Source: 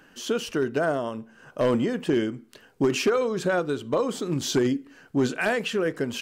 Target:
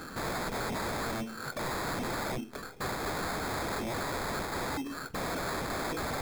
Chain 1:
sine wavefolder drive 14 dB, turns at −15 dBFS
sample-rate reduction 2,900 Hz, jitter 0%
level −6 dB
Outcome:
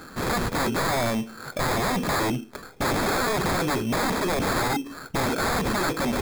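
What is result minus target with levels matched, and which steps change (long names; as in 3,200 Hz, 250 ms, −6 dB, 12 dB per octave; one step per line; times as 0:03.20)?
sine wavefolder: distortion −18 dB
change: sine wavefolder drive 14 dB, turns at −25 dBFS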